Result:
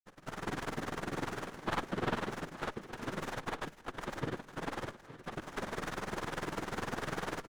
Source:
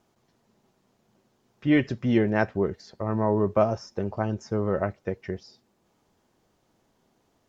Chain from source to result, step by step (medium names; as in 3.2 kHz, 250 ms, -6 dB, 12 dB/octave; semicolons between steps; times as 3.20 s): recorder AGC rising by 72 dB/s; low-pass 2.2 kHz 12 dB/octave; dynamic bell 960 Hz, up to +6 dB, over -46 dBFS, Q 5.4; reverse; compression 6:1, threshold -34 dBFS, peak gain reduction 21.5 dB; reverse; peak limiter -30.5 dBFS, peak gain reduction 10.5 dB; pitch shift +11 st; granulator 57 ms, grains 20 per s; noise-vocoded speech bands 3; delay 868 ms -15 dB; on a send at -20 dB: reverberation RT60 0.55 s, pre-delay 6 ms; on the sum: sliding maximum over 9 samples; trim +6.5 dB